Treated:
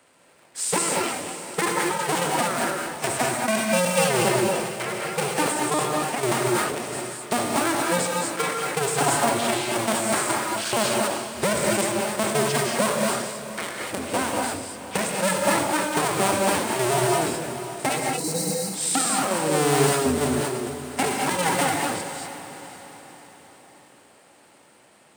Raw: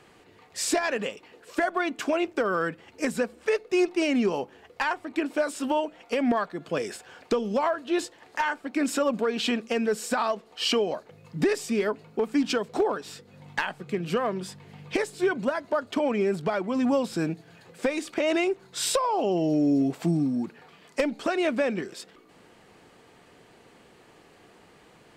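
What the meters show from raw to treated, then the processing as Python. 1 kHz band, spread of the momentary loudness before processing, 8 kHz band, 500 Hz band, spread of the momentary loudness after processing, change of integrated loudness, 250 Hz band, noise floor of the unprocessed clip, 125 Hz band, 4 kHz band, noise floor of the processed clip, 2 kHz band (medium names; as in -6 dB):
+7.0 dB, 10 LU, +13.0 dB, +2.0 dB, 9 LU, +4.0 dB, -0.5 dB, -56 dBFS, +6.5 dB, +6.0 dB, -54 dBFS, +5.0 dB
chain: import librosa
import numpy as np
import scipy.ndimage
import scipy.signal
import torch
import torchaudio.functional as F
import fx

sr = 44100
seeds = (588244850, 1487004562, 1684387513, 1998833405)

p1 = fx.cycle_switch(x, sr, every=2, mode='inverted')
p2 = fx.level_steps(p1, sr, step_db=24)
p3 = p1 + (p2 * 10.0 ** (2.0 / 20.0))
p4 = scipy.signal.sosfilt(scipy.signal.bessel(2, 160.0, 'highpass', norm='mag', fs=sr, output='sos'), p3)
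p5 = fx.peak_eq(p4, sr, hz=8700.0, db=13.5, octaves=0.34)
p6 = fx.spec_repair(p5, sr, seeds[0], start_s=17.99, length_s=0.54, low_hz=530.0, high_hz=3800.0, source='after')
p7 = p6 + fx.echo_diffused(p6, sr, ms=511, feedback_pct=48, wet_db=-11.5, dry=0)
p8 = fx.rev_gated(p7, sr, seeds[1], gate_ms=260, shape='rising', drr_db=-1.0)
p9 = fx.sustainer(p8, sr, db_per_s=43.0)
y = p9 * 10.0 ** (-6.0 / 20.0)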